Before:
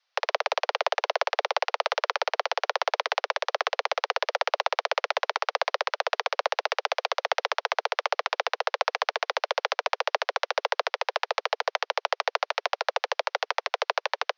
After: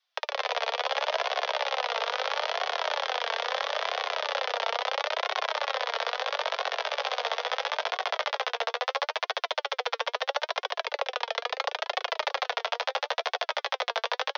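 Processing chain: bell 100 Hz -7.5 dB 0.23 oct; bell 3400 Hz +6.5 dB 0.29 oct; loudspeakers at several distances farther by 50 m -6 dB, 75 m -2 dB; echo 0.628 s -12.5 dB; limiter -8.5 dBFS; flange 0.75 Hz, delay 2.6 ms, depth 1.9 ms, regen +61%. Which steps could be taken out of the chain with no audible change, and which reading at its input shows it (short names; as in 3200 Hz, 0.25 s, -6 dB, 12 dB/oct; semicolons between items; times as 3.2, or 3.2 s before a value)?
bell 100 Hz: input band starts at 360 Hz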